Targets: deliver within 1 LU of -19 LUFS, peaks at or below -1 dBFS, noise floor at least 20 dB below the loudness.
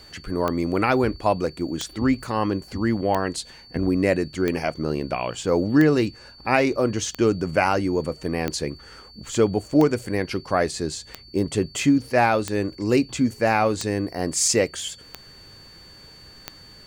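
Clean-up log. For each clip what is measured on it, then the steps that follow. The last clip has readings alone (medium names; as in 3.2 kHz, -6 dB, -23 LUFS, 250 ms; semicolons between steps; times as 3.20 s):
clicks found 13; steady tone 4.5 kHz; tone level -46 dBFS; loudness -23.0 LUFS; peak level -4.0 dBFS; loudness target -19.0 LUFS
-> de-click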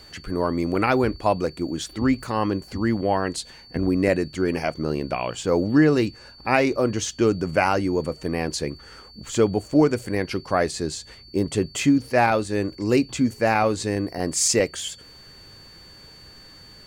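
clicks found 0; steady tone 4.5 kHz; tone level -46 dBFS
-> band-stop 4.5 kHz, Q 30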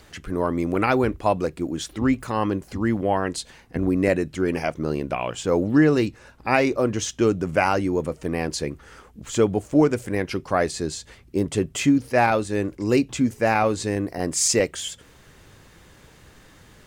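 steady tone not found; loudness -23.0 LUFS; peak level -4.0 dBFS; loudness target -19.0 LUFS
-> trim +4 dB; peak limiter -1 dBFS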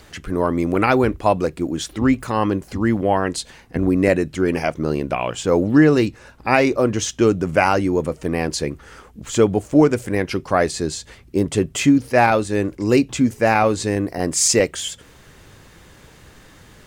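loudness -19.0 LUFS; peak level -1.0 dBFS; noise floor -47 dBFS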